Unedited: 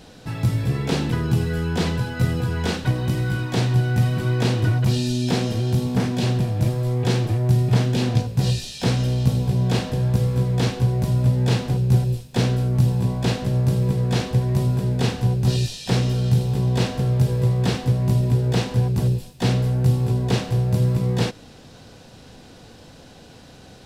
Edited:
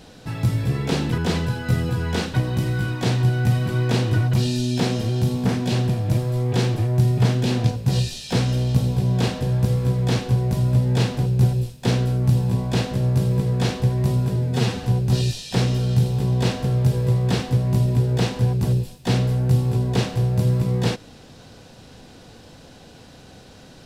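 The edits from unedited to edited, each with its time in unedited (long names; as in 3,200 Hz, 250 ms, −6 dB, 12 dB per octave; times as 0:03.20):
0:01.18–0:01.69: remove
0:14.87–0:15.19: time-stretch 1.5×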